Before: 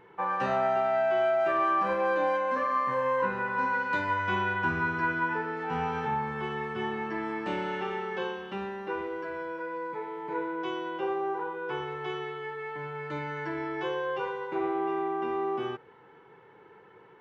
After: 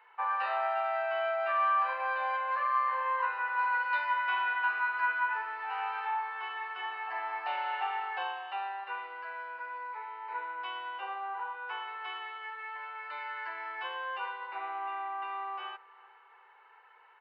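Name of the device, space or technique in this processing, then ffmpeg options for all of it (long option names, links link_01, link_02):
musical greeting card: -filter_complex "[0:a]highshelf=frequency=4300:gain=-10.5,bandreject=frequency=3300:width=5.3,asettb=1/sr,asplit=3[link_01][link_02][link_03];[link_01]atrim=end=7.074[link_04];[link_02]atrim=start=7.07:end=8.84,asetpts=PTS-STARTPTS,afade=type=in:duration=0.004:curve=qsin,afade=type=out:start_time=1.766:duration=0.004:curve=qsin,equalizer=frequency=740:width_type=o:width=0.35:gain=13.5[link_05];[link_03]atrim=start=8.836[link_06];[link_04][link_05]acrossfade=duration=0.004:curve1=hsin:curve2=qsin[link_07];[link_07][link_06]acrossfade=duration=0.004:curve1=qsin:curve2=hsin,asplit=2[link_08][link_09];[link_09]adelay=376,lowpass=frequency=2000:poles=1,volume=-21dB,asplit=2[link_10][link_11];[link_11]adelay=376,lowpass=frequency=2000:poles=1,volume=0.53,asplit=2[link_12][link_13];[link_13]adelay=376,lowpass=frequency=2000:poles=1,volume=0.53,asplit=2[link_14][link_15];[link_15]adelay=376,lowpass=frequency=2000:poles=1,volume=0.53[link_16];[link_08][link_10][link_12][link_14][link_16]amix=inputs=5:normalize=0,aresample=11025,aresample=44100,highpass=frequency=800:width=0.5412,highpass=frequency=800:width=1.3066,equalizer=frequency=3100:width_type=o:width=0.59:gain=7"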